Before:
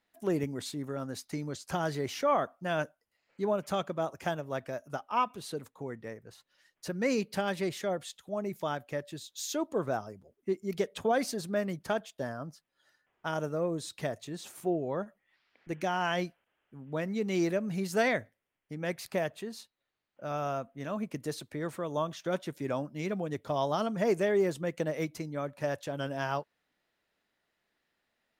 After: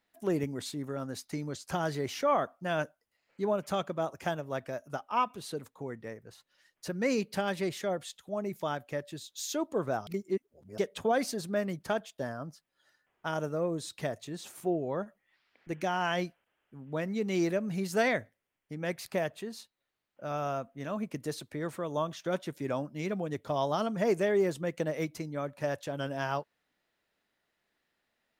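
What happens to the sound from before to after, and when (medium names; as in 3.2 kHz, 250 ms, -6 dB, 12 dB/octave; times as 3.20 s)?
10.07–10.78 s: reverse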